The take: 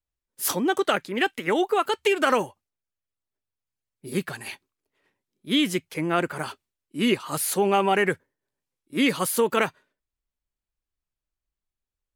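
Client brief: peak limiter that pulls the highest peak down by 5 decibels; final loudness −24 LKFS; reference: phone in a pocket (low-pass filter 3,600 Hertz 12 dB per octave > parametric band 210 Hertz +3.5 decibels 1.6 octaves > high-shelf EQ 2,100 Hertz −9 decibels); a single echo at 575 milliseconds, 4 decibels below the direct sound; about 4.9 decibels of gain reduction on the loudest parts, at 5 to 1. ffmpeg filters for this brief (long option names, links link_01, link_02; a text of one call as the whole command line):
ffmpeg -i in.wav -af "acompressor=threshold=-22dB:ratio=5,alimiter=limit=-17dB:level=0:latency=1,lowpass=3600,equalizer=frequency=210:width_type=o:width=1.6:gain=3.5,highshelf=frequency=2100:gain=-9,aecho=1:1:575:0.631,volume=5dB" out.wav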